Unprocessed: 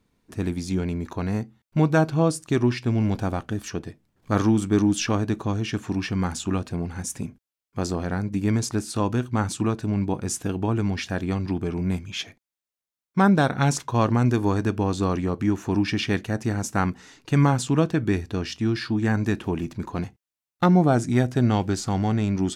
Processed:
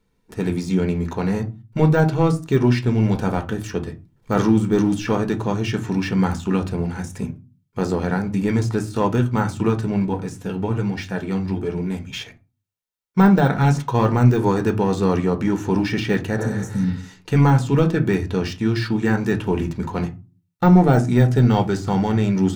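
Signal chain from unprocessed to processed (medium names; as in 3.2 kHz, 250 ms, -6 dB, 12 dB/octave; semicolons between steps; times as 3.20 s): 16.41–17.00 s: spectral replace 290–5400 Hz both; de-esser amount 90%; waveshaping leveller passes 1; 10.07–12.13 s: flange 1.1 Hz, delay 2.6 ms, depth 9.5 ms, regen +41%; reverberation RT60 0.30 s, pre-delay 4 ms, DRR 5.5 dB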